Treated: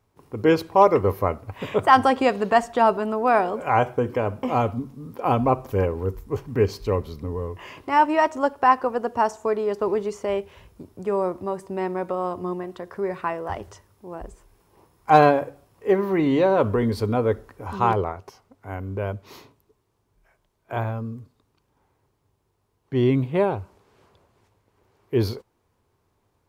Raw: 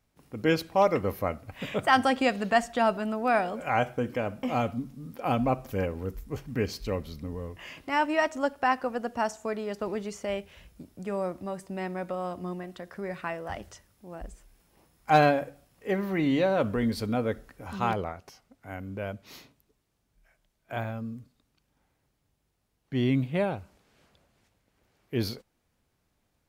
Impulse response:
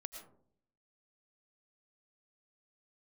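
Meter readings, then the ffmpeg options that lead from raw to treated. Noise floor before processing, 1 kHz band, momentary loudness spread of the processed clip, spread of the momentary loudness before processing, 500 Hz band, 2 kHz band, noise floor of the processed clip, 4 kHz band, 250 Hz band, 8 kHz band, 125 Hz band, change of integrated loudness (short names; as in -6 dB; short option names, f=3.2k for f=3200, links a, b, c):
-76 dBFS, +7.5 dB, 15 LU, 16 LU, +7.0 dB, +2.0 dB, -70 dBFS, +0.5 dB, +4.0 dB, n/a, +6.0 dB, +6.5 dB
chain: -af "equalizer=f=100:t=o:w=0.67:g=10,equalizer=f=400:t=o:w=0.67:g=11,equalizer=f=1k:t=o:w=0.67:g=11"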